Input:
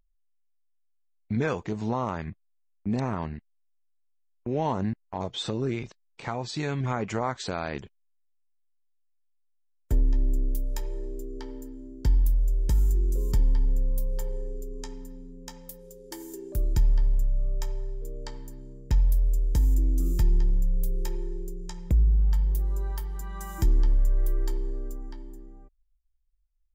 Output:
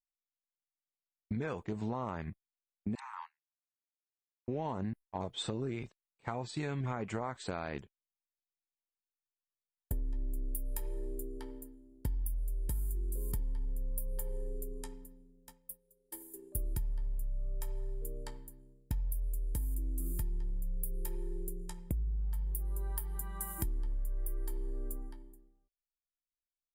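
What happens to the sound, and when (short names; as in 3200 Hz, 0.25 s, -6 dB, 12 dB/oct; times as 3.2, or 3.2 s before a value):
2.95–4.48 steep high-pass 850 Hz 96 dB/oct
whole clip: expander -31 dBFS; resonant high shelf 8000 Hz +10 dB, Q 3; compressor 6:1, threshold -31 dBFS; gain -2 dB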